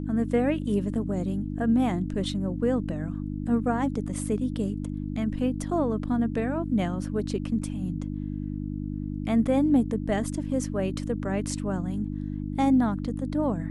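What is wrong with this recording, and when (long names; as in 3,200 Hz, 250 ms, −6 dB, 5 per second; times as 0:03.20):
mains hum 50 Hz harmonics 6 −32 dBFS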